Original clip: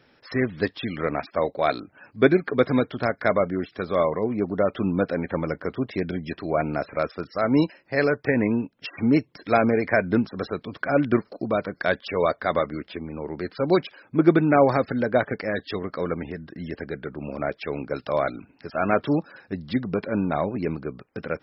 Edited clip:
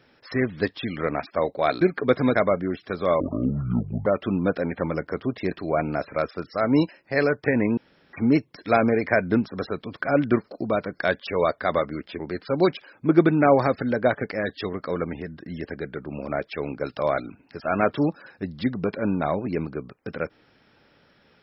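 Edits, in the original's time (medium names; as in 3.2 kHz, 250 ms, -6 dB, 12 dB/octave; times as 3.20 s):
1.81–2.31 s: delete
2.85–3.24 s: delete
4.09–4.59 s: speed 58%
6.04–6.32 s: delete
8.58–8.94 s: room tone
13.00–13.29 s: delete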